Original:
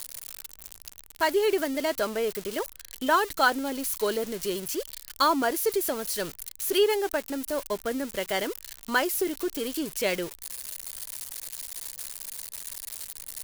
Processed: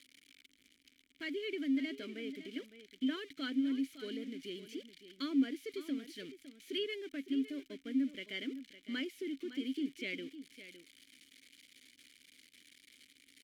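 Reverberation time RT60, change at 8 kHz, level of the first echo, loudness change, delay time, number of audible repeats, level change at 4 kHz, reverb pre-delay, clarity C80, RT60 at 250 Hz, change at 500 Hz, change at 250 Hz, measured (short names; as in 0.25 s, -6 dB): none, under -25 dB, -13.0 dB, -10.5 dB, 0.559 s, 1, -11.0 dB, none, none, none, -17.5 dB, -3.0 dB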